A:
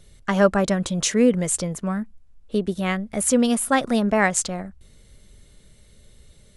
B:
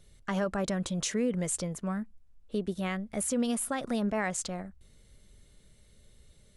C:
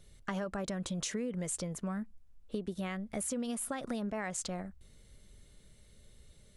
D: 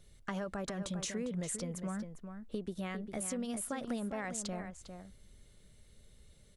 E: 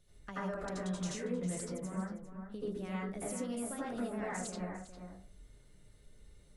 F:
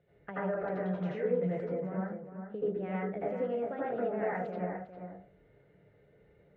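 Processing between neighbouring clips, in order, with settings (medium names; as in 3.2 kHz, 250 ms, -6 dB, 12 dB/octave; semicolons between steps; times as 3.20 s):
peak limiter -13.5 dBFS, peak gain reduction 9.5 dB; trim -7.5 dB
compression, threshold -33 dBFS, peak gain reduction 8.5 dB
echo from a far wall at 69 m, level -8 dB; trim -2 dB
reverberation RT60 0.35 s, pre-delay 72 ms, DRR -7.5 dB; trim -8 dB
cabinet simulation 140–2200 Hz, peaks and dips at 160 Hz +3 dB, 240 Hz -8 dB, 470 Hz +7 dB, 710 Hz +5 dB, 1.1 kHz -8 dB; trim +4.5 dB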